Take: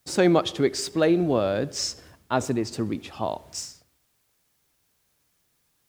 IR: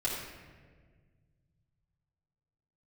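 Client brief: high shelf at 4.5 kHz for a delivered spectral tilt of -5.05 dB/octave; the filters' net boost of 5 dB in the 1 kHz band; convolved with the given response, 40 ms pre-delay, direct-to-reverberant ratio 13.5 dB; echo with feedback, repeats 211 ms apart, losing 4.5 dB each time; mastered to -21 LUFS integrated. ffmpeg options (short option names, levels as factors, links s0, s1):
-filter_complex "[0:a]equalizer=f=1000:t=o:g=7,highshelf=f=4500:g=-6.5,aecho=1:1:211|422|633|844|1055|1266|1477|1688|1899:0.596|0.357|0.214|0.129|0.0772|0.0463|0.0278|0.0167|0.01,asplit=2[s0][s1];[1:a]atrim=start_sample=2205,adelay=40[s2];[s1][s2]afir=irnorm=-1:irlink=0,volume=0.106[s3];[s0][s3]amix=inputs=2:normalize=0,volume=1.19"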